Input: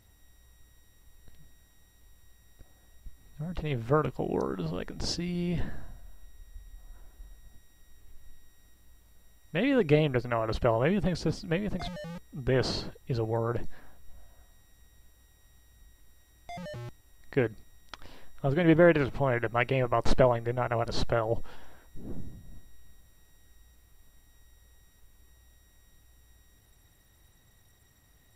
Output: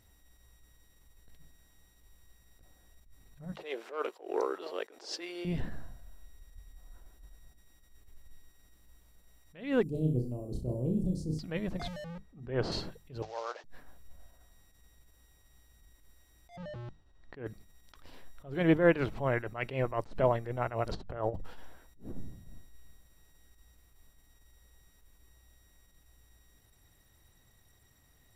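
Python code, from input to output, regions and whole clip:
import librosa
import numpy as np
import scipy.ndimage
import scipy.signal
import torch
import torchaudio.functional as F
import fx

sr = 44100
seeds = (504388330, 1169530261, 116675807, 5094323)

y = fx.chain(x, sr, fx.leveller(passes=1),
    fx.steep_highpass(hz=360.0, slope=36),
    fx.high_shelf(hz=12000.0, db=-9.0), at=(3.52, 5.45))
y = fx.chain(y, sr, fx.cheby1_bandstop(low_hz=270.0, high_hz=9200.0, order=2),
    fx.room_flutter(wall_m=5.5, rt60_s=0.38), at=(9.83, 11.39))
y = fx.chain(y, sr, fx.lowpass(hz=1800.0, slope=6),
    fx.hum_notches(base_hz=50, count=6), at=(12.04, 12.72))
y = fx.chain(y, sr, fx.cvsd(bps=32000),
    fx.highpass(hz=580.0, slope=24), at=(13.22, 13.64))
y = fx.chain(y, sr, fx.lowpass(hz=3200.0, slope=12),
    fx.peak_eq(hz=2200.0, db=-7.0, octaves=0.48), at=(16.56, 17.46))
y = fx.chain(y, sr, fx.high_shelf(hz=2600.0, db=-10.0),
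    fx.over_compress(threshold_db=-32.0, ratio=-0.5), at=(20.91, 21.45))
y = fx.hum_notches(y, sr, base_hz=50, count=4)
y = fx.attack_slew(y, sr, db_per_s=140.0)
y = y * 10.0 ** (-2.0 / 20.0)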